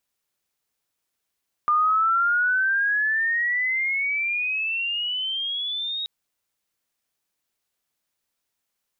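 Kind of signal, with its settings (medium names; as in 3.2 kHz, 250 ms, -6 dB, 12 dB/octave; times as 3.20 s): sweep logarithmic 1.2 kHz -> 3.8 kHz -16.5 dBFS -> -26 dBFS 4.38 s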